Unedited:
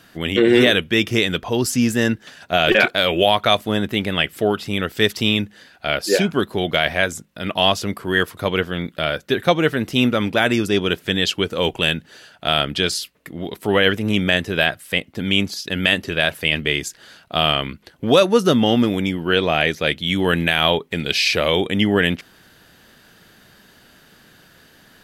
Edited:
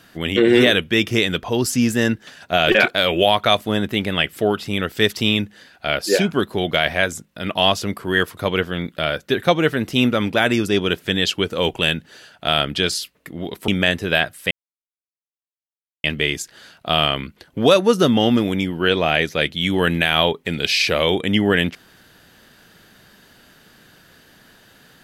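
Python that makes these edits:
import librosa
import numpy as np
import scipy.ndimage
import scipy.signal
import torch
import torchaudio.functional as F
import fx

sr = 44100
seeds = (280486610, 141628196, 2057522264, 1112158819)

y = fx.edit(x, sr, fx.cut(start_s=13.68, length_s=0.46),
    fx.silence(start_s=14.97, length_s=1.53), tone=tone)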